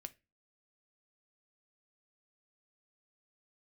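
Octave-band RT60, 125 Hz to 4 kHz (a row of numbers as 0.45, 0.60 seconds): 0.40, 0.40, 0.30, 0.20, 0.30, 0.25 seconds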